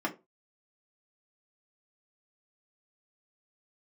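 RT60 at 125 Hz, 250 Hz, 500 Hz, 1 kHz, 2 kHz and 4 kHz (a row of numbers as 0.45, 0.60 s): 0.30, 0.25, 0.30, 0.25, 0.20, 0.15 s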